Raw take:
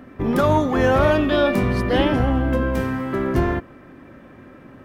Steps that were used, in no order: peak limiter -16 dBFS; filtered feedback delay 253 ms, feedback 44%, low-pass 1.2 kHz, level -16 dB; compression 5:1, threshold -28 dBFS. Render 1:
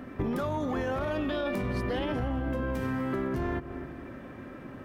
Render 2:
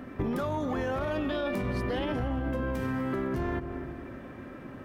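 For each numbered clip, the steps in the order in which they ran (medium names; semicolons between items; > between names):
peak limiter > filtered feedback delay > compression; filtered feedback delay > peak limiter > compression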